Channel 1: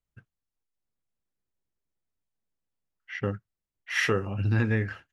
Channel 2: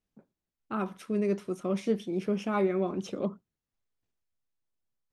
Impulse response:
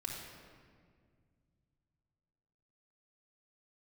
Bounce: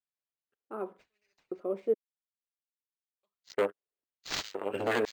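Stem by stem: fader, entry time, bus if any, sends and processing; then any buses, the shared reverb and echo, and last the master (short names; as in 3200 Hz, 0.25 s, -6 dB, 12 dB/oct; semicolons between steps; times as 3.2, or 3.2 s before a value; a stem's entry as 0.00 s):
-6.0 dB, 0.35 s, no send, sine folder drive 8 dB, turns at -12.5 dBFS; power-law curve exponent 3
-4.5 dB, 0.00 s, muted 1.94–3.23, no send, bell 4600 Hz -13.5 dB 2.9 oct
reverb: off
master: notch 5200 Hz, Q 5.1; LFO high-pass square 0.99 Hz 430–6800 Hz; decimation joined by straight lines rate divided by 4×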